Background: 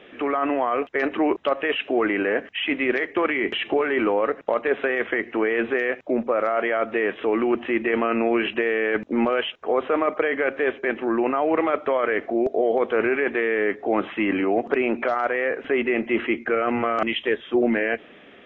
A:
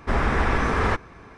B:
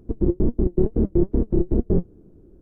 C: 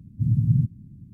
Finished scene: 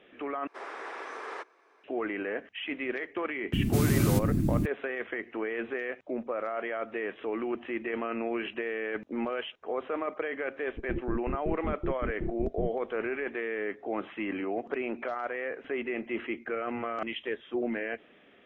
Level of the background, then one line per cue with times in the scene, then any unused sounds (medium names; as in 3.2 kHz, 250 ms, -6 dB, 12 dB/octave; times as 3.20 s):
background -11 dB
0.47 s: replace with A -15 dB + steep high-pass 350 Hz
3.53 s: add C -4 dB + spectrum-flattening compressor 10:1
10.68 s: add B -14.5 dB